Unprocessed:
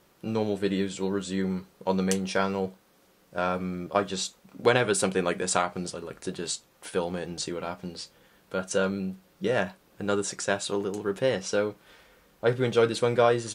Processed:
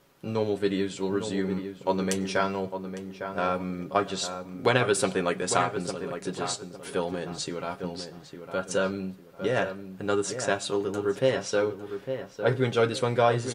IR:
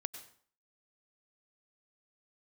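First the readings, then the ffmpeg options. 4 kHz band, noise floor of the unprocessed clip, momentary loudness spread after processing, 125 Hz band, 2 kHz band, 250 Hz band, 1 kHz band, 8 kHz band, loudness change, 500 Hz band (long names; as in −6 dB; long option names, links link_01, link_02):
0.0 dB, −62 dBFS, 10 LU, +0.5 dB, +0.5 dB, −0.5 dB, +1.5 dB, −1.5 dB, 0.0 dB, 0.0 dB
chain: -filter_complex "[0:a]aecho=1:1:7.3:0.4,asplit=2[link_01][link_02];[link_02]adelay=855,lowpass=frequency=1700:poles=1,volume=-8dB,asplit=2[link_03][link_04];[link_04]adelay=855,lowpass=frequency=1700:poles=1,volume=0.31,asplit=2[link_05][link_06];[link_06]adelay=855,lowpass=frequency=1700:poles=1,volume=0.31,asplit=2[link_07][link_08];[link_08]adelay=855,lowpass=frequency=1700:poles=1,volume=0.31[link_09];[link_01][link_03][link_05][link_07][link_09]amix=inputs=5:normalize=0,asplit=2[link_10][link_11];[1:a]atrim=start_sample=2205,lowpass=6500[link_12];[link_11][link_12]afir=irnorm=-1:irlink=0,volume=-12dB[link_13];[link_10][link_13]amix=inputs=2:normalize=0,volume=-2dB"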